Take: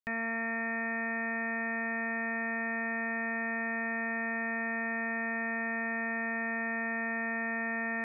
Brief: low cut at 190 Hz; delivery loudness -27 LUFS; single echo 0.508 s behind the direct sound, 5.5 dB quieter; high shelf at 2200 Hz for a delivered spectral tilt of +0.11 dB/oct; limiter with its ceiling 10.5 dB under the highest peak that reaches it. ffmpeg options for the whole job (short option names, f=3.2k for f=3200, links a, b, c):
-af "highpass=190,highshelf=f=2.2k:g=-8.5,alimiter=level_in=12.5dB:limit=-24dB:level=0:latency=1,volume=-12.5dB,aecho=1:1:508:0.531,volume=20.5dB"